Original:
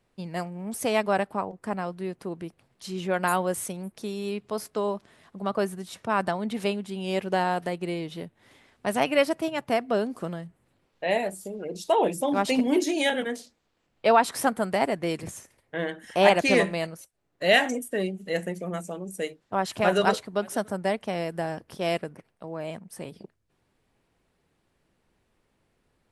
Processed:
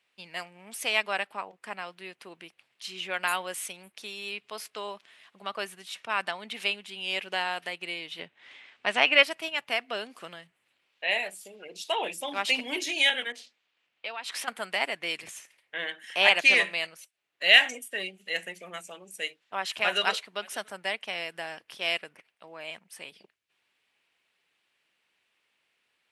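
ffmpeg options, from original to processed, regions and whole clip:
-filter_complex "[0:a]asettb=1/sr,asplit=3[a][b][c];[a]atrim=end=8.194[d];[b]atrim=start=8.19:end=9.23,asetpts=PTS-STARTPTS,afade=t=in:d=0.004:c=qsin,afade=t=out:st=1.036:d=0.004:c=qsin,lowpass=f=8.7k:w=0.5412,lowpass=f=8.7k:w=1.3066,highshelf=f=5.5k:g=-12,acontrast=49[e];[c]atrim=start=9.226[f];[d][e]acrossfade=d=0.004:c1=hsin:c2=qsin[g];[g][f]acrossfade=d=0.004:c1=qsin:c2=hsin,asettb=1/sr,asplit=3[h][i][j];[h]atrim=end=13.324[k];[i]atrim=start=13.32:end=14.48,asetpts=PTS-STARTPTS,afade=t=in:d=0.004:c=qsin,afade=t=out:st=1.156:d=0.004:c=qsin,lowpass=f=3.4k:p=1,acompressor=threshold=-34dB:ratio=3:attack=3.2:release=140:knee=1:detection=peak,adynamicequalizer=threshold=0.00251:dfrequency=2300:dqfactor=0.7:tfrequency=2300:tqfactor=0.7:attack=5:release=100:ratio=0.375:range=3:mode=boostabove:tftype=highshelf[l];[j]atrim=start=14.476[m];[k][l]acrossfade=d=0.004:c1=hsin:c2=qsin[n];[n][m]acrossfade=d=0.004:c1=qsin:c2=hsin,highpass=f=1.2k:p=1,equalizer=f=2.7k:w=1:g=12.5,volume=-3.5dB"

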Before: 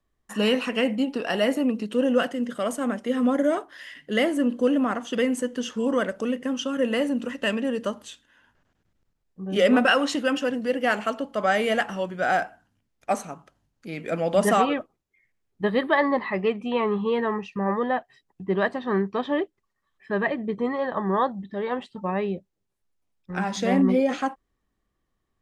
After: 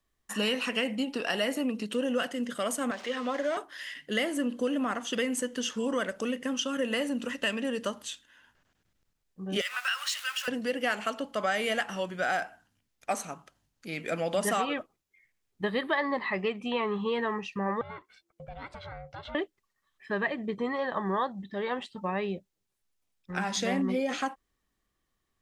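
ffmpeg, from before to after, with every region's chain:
-filter_complex "[0:a]asettb=1/sr,asplit=3[a][b][c];[a]atrim=end=2.914[d];[b]atrim=start=2.91:end=3.57,asetpts=PTS-STARTPTS,afade=t=in:d=0.004:c=qsin,afade=t=out:st=0.656:d=0.004:c=qsin,aeval=exprs='val(0)+0.5*0.015*sgn(val(0))':c=same,acrossover=split=420 6500:gain=0.224 1 0.0631[e][f][g];[e][f][g]amix=inputs=3:normalize=0,bandreject=f=1.4k:w=23[h];[c]atrim=start=3.566[i];[d][h]acrossfade=d=0.004:c1=hsin:c2=qsin[j];[j][i]acrossfade=d=0.004:c1=qsin:c2=hsin,asettb=1/sr,asplit=3[k][l][m];[k]atrim=end=9.614[n];[l]atrim=start=9.61:end=10.48,asetpts=PTS-STARTPTS,afade=t=in:d=0.004:c=qsin,afade=t=out:st=0.866:d=0.004:c=qsin,aeval=exprs='val(0)+0.5*0.0211*sgn(val(0))':c=same,highpass=f=1.2k:w=0.5412,highpass=f=1.2k:w=1.3066,acompressor=threshold=-35dB:ratio=1.5:attack=3.2:release=140:knee=1:detection=peak[o];[m]atrim=start=10.476[p];[n][o]acrossfade=d=0.004:c1=hsin:c2=qsin[q];[q][p]acrossfade=d=0.004:c1=qsin:c2=hsin,asettb=1/sr,asplit=3[r][s][t];[r]atrim=end=17.814[u];[s]atrim=start=17.81:end=19.35,asetpts=PTS-STARTPTS,afade=t=in:d=0.004:c=qsin,afade=t=out:st=1.536:d=0.004:c=qsin,acompressor=threshold=-34dB:ratio=6:attack=3.2:release=140:knee=1:detection=peak,aeval=exprs='val(0)*sin(2*PI*340*n/s)':c=same[v];[t]atrim=start=19.346[w];[u][v]acrossfade=d=0.004:c1=hsin:c2=qsin[x];[x][w]acrossfade=d=0.004:c1=qsin:c2=hsin,tiltshelf=f=1.5k:g=-4.5,acompressor=threshold=-27dB:ratio=2.5"

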